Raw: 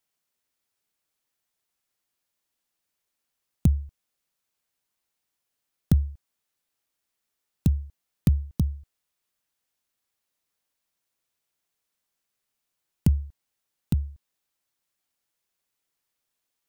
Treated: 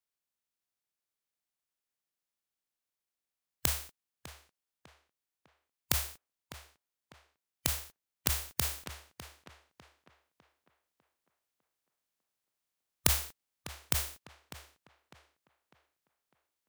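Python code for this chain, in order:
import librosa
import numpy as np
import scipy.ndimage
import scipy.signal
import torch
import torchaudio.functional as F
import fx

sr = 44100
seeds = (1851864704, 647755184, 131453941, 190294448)

p1 = fx.spec_flatten(x, sr, power=0.23)
p2 = p1 + fx.echo_tape(p1, sr, ms=601, feedback_pct=43, wet_db=-11, lp_hz=2900.0, drive_db=1.0, wow_cents=13, dry=0)
p3 = fx.rider(p2, sr, range_db=10, speed_s=0.5)
y = p3 * librosa.db_to_amplitude(-7.5)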